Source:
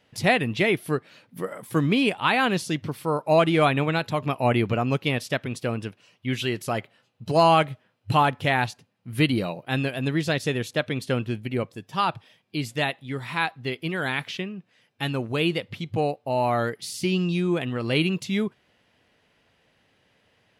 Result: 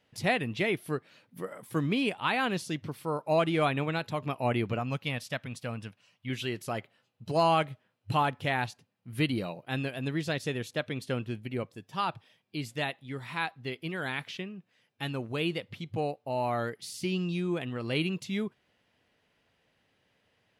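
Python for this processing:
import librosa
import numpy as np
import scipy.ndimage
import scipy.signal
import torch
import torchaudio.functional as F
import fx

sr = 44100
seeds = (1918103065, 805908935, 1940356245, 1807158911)

y = fx.peak_eq(x, sr, hz=370.0, db=-10.5, octaves=0.65, at=(4.79, 6.3))
y = F.gain(torch.from_numpy(y), -7.0).numpy()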